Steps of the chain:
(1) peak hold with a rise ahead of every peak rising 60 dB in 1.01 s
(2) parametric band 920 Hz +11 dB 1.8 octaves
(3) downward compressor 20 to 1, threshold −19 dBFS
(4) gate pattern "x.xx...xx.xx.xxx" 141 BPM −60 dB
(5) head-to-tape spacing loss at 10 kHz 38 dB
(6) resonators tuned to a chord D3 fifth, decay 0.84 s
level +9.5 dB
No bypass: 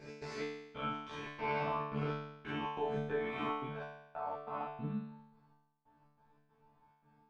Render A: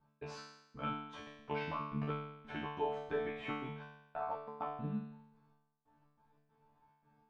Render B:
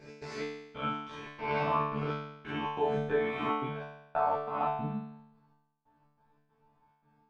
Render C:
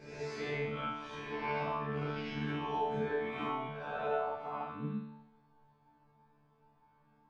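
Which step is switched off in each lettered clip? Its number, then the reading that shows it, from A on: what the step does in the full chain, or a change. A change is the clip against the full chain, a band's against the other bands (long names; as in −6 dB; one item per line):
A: 1, change in momentary loudness spread +3 LU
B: 3, average gain reduction 4.5 dB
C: 4, change in momentary loudness spread −3 LU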